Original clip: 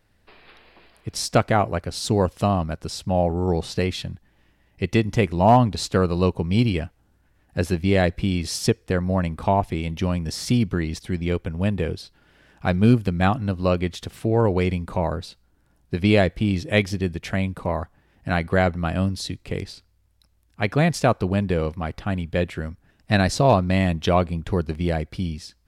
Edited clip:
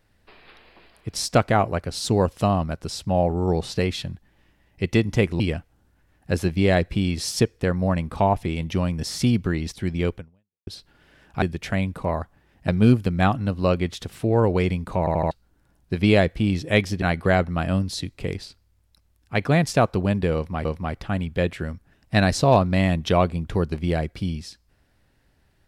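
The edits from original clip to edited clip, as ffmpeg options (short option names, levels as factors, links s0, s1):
-filter_complex "[0:a]asplit=11[s0][s1][s2][s3][s4][s5][s6][s7][s8][s9][s10];[s0]atrim=end=5.402[s11];[s1]atrim=start=6.668:end=11.94,asetpts=PTS-STARTPTS,afade=t=out:st=4.762:d=0.51:c=exp[s12];[s2]atrim=start=11.94:end=12.692,asetpts=PTS-STARTPTS,afade=t=in:d=0.004:c=hsin[s13];[s3]atrim=start=17.028:end=18.292[s14];[s4]atrim=start=12.688:end=15.082[s15];[s5]atrim=start=14.998:end=15.082[s16];[s6]atrim=start=14.998:end=15.082[s17];[s7]atrim=start=14.998:end=15.082[s18];[s8]atrim=start=15.318:end=17.032[s19];[s9]atrim=start=18.288:end=21.922[s20];[s10]atrim=start=21.618[s21];[s12][s13]concat=n=2:v=0:a=1[s22];[s11][s22]acrossfade=d=0.004:c1=hsin:c2=hsin[s23];[s23][s14]acrossfade=d=0.004:c1=hsin:c2=hsin[s24];[s24][s15]acrossfade=d=0.004:c1=hsin:c2=hsin[s25];[s25][s16]acrossfade=d=0.004:c1=hsin:c2=hsin[s26];[s26][s17]acrossfade=d=0.004:c1=hsin:c2=hsin[s27];[s27][s18]acrossfade=d=0.004:c1=hsin:c2=hsin[s28];[s28][s19]acrossfade=d=0.004:c1=hsin:c2=hsin[s29];[s29][s20]acrossfade=d=0.004:c1=hsin:c2=hsin[s30];[s30][s21]acrossfade=d=0.004:c1=hsin:c2=hsin"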